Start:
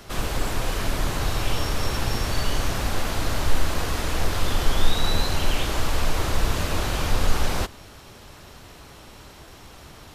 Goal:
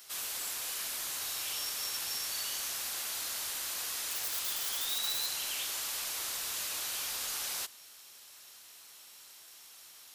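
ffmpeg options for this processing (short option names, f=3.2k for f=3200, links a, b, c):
-filter_complex "[0:a]asettb=1/sr,asplit=3[a][b][c];[a]atrim=end=4.114[d];[b]atrim=start=4.11:end=5.26,asetpts=PTS-STARTPTS,afade=t=in:d=0.004:c=qsin,afade=t=out:st=1.146:d=0.004:c=qsin,acrusher=bits=7:dc=4:mix=0:aa=0.000001[e];[c]atrim=start=5.256[f];[d][e]acrossfade=d=0.004:c1=hsin:c2=qsin[g];[g][f]acrossfade=d=0.004:c1=qsin:c2=hsin,aderivative"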